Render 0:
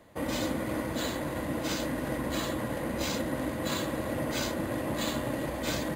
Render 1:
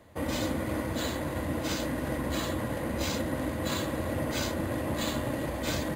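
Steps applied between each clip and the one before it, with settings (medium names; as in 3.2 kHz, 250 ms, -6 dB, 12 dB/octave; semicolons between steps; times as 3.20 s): peaking EQ 83 Hz +8.5 dB 0.62 oct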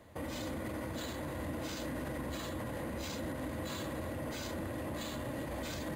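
peak limiter -30 dBFS, peak gain reduction 11 dB; trim -1.5 dB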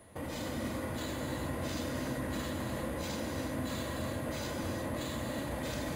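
whistle 9.8 kHz -62 dBFS; gated-style reverb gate 400 ms flat, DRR 0.5 dB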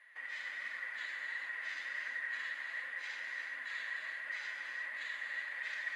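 ladder band-pass 2 kHz, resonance 75%; flange 1.4 Hz, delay 3.3 ms, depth 6.6 ms, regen +41%; trim +12.5 dB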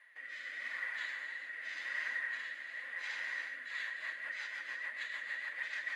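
rotary cabinet horn 0.85 Hz, later 6.7 Hz, at 3.41 s; trim +3 dB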